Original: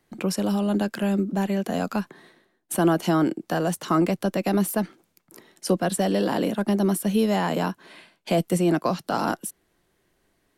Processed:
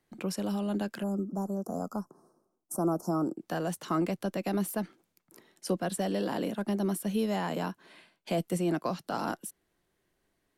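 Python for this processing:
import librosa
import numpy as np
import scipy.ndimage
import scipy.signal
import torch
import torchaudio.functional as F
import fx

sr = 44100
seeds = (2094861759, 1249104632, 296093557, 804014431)

y = fx.cheby1_bandstop(x, sr, low_hz=1300.0, high_hz=5200.0, order=4, at=(1.02, 3.36), fade=0.02)
y = F.gain(torch.from_numpy(y), -8.0).numpy()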